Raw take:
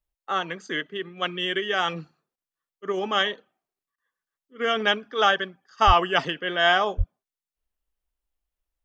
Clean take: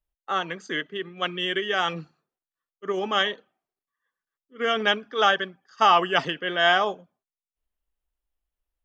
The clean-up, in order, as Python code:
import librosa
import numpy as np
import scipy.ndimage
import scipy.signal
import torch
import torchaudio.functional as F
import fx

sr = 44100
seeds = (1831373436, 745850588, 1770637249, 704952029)

y = fx.highpass(x, sr, hz=140.0, slope=24, at=(5.86, 5.98), fade=0.02)
y = fx.highpass(y, sr, hz=140.0, slope=24, at=(6.97, 7.09), fade=0.02)
y = fx.fix_interpolate(y, sr, at_s=(2.36, 3.96), length_ms=18.0)